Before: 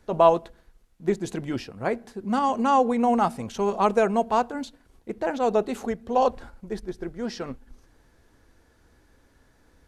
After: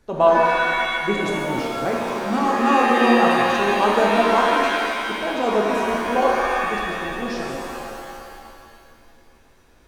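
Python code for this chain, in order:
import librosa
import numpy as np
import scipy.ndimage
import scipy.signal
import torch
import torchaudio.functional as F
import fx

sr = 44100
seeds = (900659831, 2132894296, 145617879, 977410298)

y = fx.rev_shimmer(x, sr, seeds[0], rt60_s=2.2, semitones=7, shimmer_db=-2, drr_db=-1.5)
y = y * librosa.db_to_amplitude(-1.0)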